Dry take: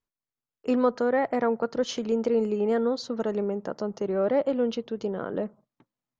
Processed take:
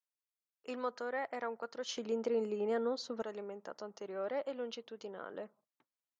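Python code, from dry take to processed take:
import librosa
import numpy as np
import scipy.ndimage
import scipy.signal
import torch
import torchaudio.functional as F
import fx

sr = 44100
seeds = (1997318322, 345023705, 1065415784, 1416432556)

y = fx.highpass(x, sr, hz=fx.steps((0.0, 1300.0), (1.97, 400.0), (3.22, 1100.0)), slope=6)
y = y * 10.0 ** (-6.5 / 20.0)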